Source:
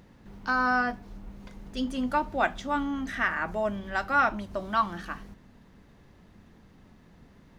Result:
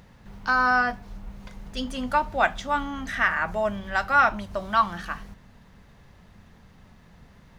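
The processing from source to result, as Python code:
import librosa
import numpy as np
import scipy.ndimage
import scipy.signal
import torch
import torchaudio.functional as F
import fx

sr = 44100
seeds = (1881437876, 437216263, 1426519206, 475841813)

y = fx.peak_eq(x, sr, hz=310.0, db=-9.5, octaves=1.0)
y = y * librosa.db_to_amplitude(5.0)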